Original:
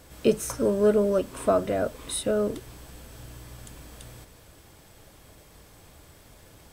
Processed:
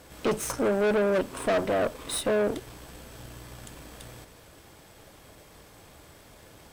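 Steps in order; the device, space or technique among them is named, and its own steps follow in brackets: tube preamp driven hard (tube stage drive 28 dB, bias 0.75; low shelf 150 Hz -7 dB; high shelf 4800 Hz -4.5 dB); gain +7.5 dB

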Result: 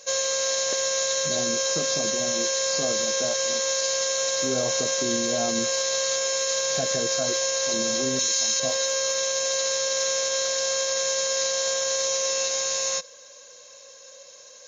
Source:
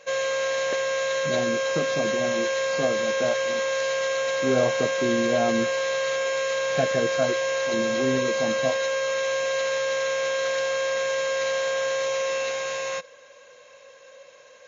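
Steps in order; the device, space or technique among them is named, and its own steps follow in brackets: 8.19–8.6 tilt shelf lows -9 dB, about 1100 Hz; over-bright horn tweeter (resonant high shelf 3600 Hz +13 dB, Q 1.5; limiter -13 dBFS, peak gain reduction 8.5 dB); gain -2 dB

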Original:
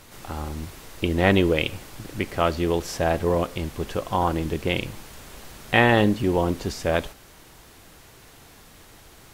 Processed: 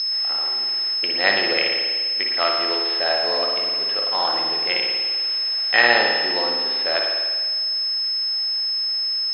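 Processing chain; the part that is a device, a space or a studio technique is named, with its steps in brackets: 0.94–2.25 gate -31 dBFS, range -7 dB; toy sound module (decimation joined by straight lines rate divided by 4×; pulse-width modulation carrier 5200 Hz; speaker cabinet 700–4900 Hz, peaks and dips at 970 Hz -5 dB, 1900 Hz +4 dB, 2800 Hz +3 dB, 4100 Hz +9 dB); bell 4900 Hz +6 dB 2.3 oct; spring tank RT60 1.6 s, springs 50 ms, chirp 30 ms, DRR 0.5 dB; gain +1.5 dB

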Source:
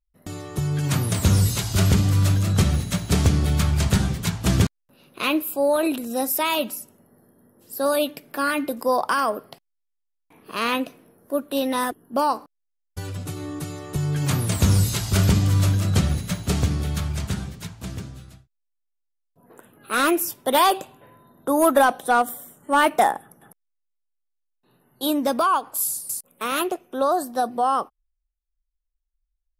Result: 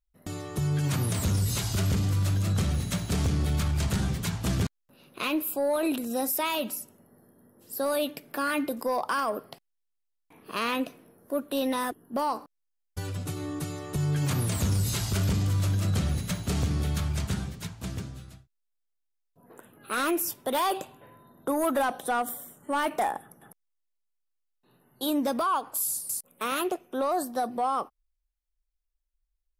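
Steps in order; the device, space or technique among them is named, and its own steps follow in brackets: soft clipper into limiter (soft clip -11.5 dBFS, distortion -20 dB; limiter -18 dBFS, peak gain reduction 6 dB); gain -2 dB

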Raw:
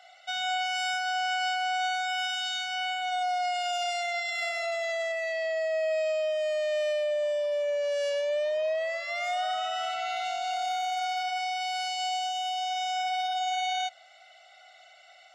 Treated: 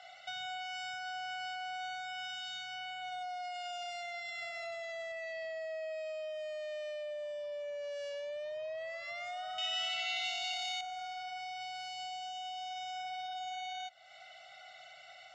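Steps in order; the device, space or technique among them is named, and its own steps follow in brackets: jukebox (LPF 6900 Hz 12 dB/oct; resonant low shelf 230 Hz +8 dB, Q 1.5; compressor 3:1, threshold -45 dBFS, peak gain reduction 13.5 dB); 9.58–10.81 resonant high shelf 1800 Hz +11 dB, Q 1.5; gain +1 dB

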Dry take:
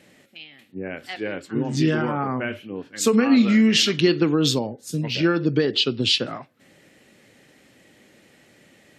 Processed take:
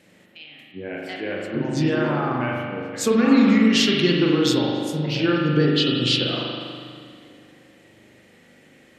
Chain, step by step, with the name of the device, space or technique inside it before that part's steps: dub delay into a spring reverb (darkening echo 0.277 s, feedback 63%, low-pass 1800 Hz, level -17 dB; spring tank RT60 2 s, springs 40 ms, chirp 55 ms, DRR -2 dB); 0.84–1.31 notch 1200 Hz, Q 6.5; gain -2.5 dB

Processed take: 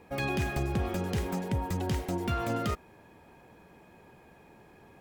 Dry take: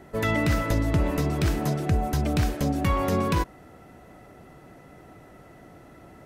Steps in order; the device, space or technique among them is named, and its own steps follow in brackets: nightcore (varispeed +25%); gain -7 dB

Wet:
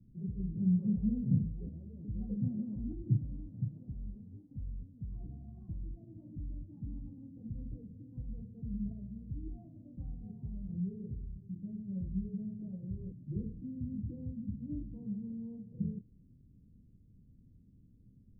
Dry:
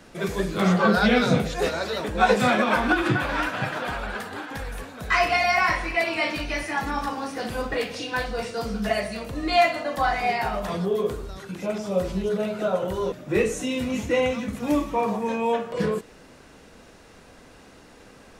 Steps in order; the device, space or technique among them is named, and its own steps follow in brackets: the neighbour's flat through the wall (LPF 210 Hz 24 dB/oct; bell 110 Hz +6.5 dB 0.57 oct); gain -6.5 dB

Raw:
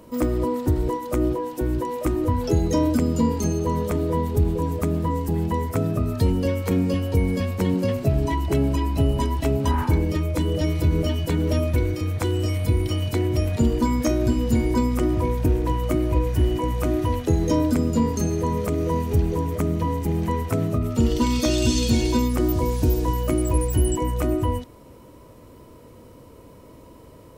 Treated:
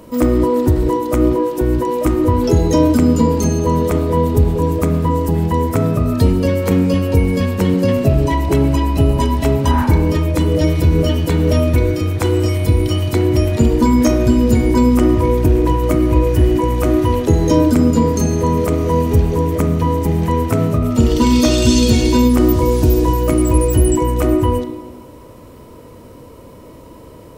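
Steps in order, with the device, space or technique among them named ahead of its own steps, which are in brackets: filtered reverb send (on a send: HPF 230 Hz + LPF 4200 Hz + reverb RT60 1.3 s, pre-delay 25 ms, DRR 6 dB); on the sum: gain +7 dB

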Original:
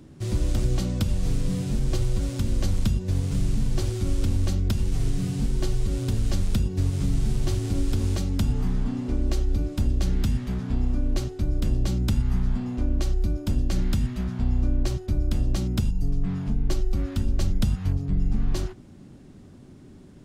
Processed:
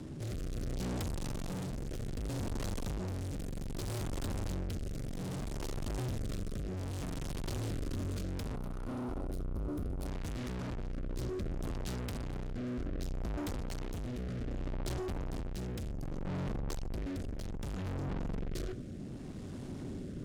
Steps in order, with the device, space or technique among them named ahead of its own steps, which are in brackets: overdriven rotary cabinet (tube stage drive 44 dB, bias 0.45; rotary speaker horn 0.65 Hz); 3.39–4.03 high shelf 9100 Hz +5.5 dB; 8.55–10.06 spectral gain 1500–8600 Hz -9 dB; gain +9.5 dB

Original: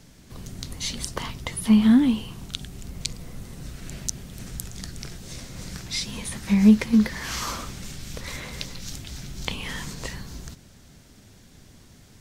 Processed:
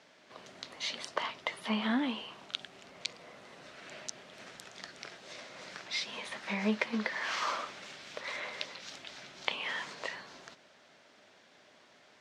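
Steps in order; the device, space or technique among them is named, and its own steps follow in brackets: tin-can telephone (BPF 590–3200 Hz; small resonant body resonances 610 Hz, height 7 dB)

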